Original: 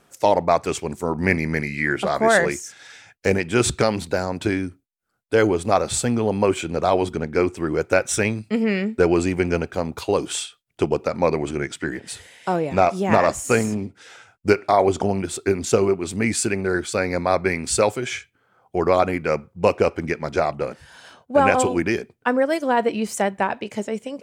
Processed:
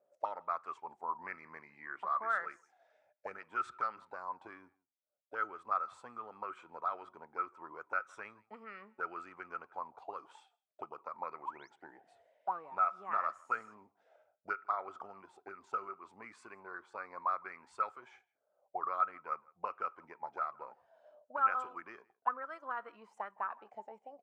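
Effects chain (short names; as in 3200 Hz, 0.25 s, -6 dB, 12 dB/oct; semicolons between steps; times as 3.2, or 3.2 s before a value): painted sound rise, 11.45–11.7, 750–6800 Hz -31 dBFS; auto-wah 580–1300 Hz, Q 18, up, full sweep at -16 dBFS; outdoor echo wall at 28 m, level -26 dB; gain +1 dB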